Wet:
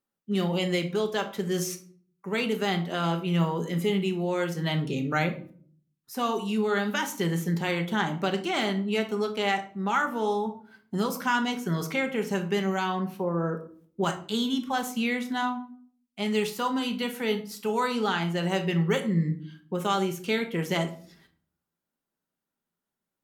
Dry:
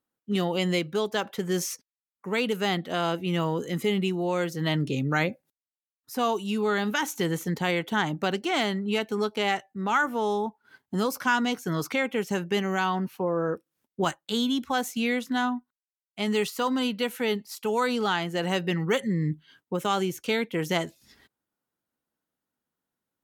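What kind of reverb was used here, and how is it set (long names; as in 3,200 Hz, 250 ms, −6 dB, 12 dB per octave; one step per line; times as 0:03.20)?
rectangular room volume 530 cubic metres, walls furnished, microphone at 1.2 metres
level −2.5 dB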